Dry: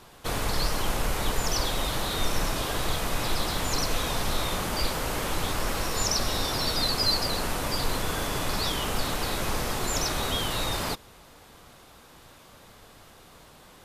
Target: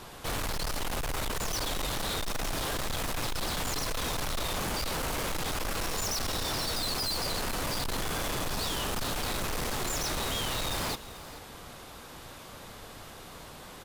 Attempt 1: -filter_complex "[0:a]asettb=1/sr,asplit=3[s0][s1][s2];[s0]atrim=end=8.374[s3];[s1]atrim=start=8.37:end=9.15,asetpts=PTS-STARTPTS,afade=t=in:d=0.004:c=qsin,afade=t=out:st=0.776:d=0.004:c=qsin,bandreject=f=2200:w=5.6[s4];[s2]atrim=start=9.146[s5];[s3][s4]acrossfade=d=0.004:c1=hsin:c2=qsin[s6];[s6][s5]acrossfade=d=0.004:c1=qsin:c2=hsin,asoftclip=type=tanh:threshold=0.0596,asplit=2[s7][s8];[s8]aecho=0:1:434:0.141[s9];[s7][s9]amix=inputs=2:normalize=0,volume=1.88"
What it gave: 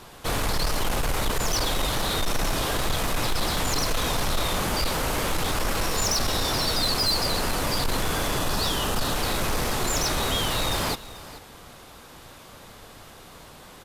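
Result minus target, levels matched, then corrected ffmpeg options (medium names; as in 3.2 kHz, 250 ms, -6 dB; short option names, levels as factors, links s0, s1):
saturation: distortion -7 dB
-filter_complex "[0:a]asettb=1/sr,asplit=3[s0][s1][s2];[s0]atrim=end=8.374[s3];[s1]atrim=start=8.37:end=9.15,asetpts=PTS-STARTPTS,afade=t=in:d=0.004:c=qsin,afade=t=out:st=0.776:d=0.004:c=qsin,bandreject=f=2200:w=5.6[s4];[s2]atrim=start=9.146[s5];[s3][s4]acrossfade=d=0.004:c1=hsin:c2=qsin[s6];[s6][s5]acrossfade=d=0.004:c1=qsin:c2=hsin,asoftclip=type=tanh:threshold=0.0168,asplit=2[s7][s8];[s8]aecho=0:1:434:0.141[s9];[s7][s9]amix=inputs=2:normalize=0,volume=1.88"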